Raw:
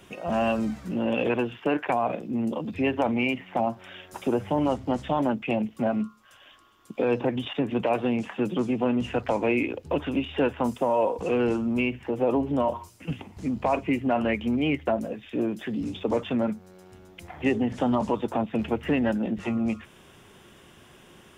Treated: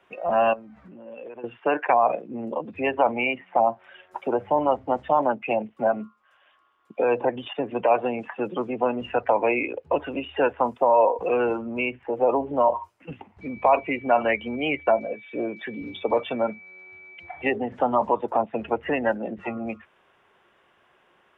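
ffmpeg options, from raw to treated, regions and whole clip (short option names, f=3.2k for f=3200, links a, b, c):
-filter_complex "[0:a]asettb=1/sr,asplit=3[a][b][c];[a]atrim=end=0.534[d];[b]atrim=start=0.53:end=1.44,asetpts=PTS-STARTPTS,afade=t=in:d=0.004:c=qsin,afade=t=out:st=0.906:d=0.004:c=qsin,highshelf=f=5.1k:g=-7,acompressor=threshold=-35dB:ratio=12:attack=3.2:release=140:knee=1:detection=peak[e];[c]atrim=start=1.436[f];[d][e]acrossfade=d=0.004:c1=hsin:c2=qsin[g];[g][f]acrossfade=d=0.004:c1=qsin:c2=hsin,asettb=1/sr,asplit=3[h][i][j];[h]atrim=end=13.414[k];[i]atrim=start=13.41:end=17.5,asetpts=PTS-STARTPTS,afade=t=in:d=0.004:c=qsin,afade=t=out:st=4.086:d=0.004:c=qsin,lowpass=5.2k,equalizer=f=4k:t=o:w=0.49:g=11,aeval=exprs='val(0)+0.00501*sin(2*PI*2300*n/s)':c=same[l];[j]atrim=start=17.496[m];[k][l]acrossfade=d=0.004:c1=hsin:c2=qsin[n];[n][m]acrossfade=d=0.004:c1=qsin:c2=hsin,afftdn=nr=12:nf=-34,acrossover=split=480 2600:gain=0.141 1 0.1[o][p][q];[o][p][q]amix=inputs=3:normalize=0,volume=8dB"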